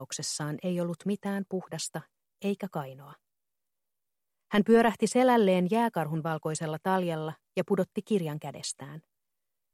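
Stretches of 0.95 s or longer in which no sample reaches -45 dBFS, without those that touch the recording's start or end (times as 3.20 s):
3.13–4.51 s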